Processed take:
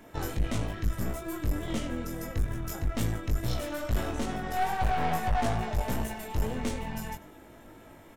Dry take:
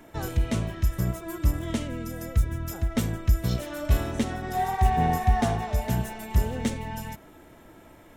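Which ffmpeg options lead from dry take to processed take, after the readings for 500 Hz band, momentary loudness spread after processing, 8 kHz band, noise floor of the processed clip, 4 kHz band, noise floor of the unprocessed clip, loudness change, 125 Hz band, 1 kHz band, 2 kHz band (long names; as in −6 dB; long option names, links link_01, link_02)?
−2.0 dB, 11 LU, −2.5 dB, −52 dBFS, −1.5 dB, −51 dBFS, −4.5 dB, −6.5 dB, −3.0 dB, −1.0 dB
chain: -af "aecho=1:1:95:0.0944,aeval=exprs='(tanh(25.1*val(0)+0.6)-tanh(0.6))/25.1':channel_layout=same,flanger=delay=18.5:depth=2.2:speed=2.3,volume=5.5dB"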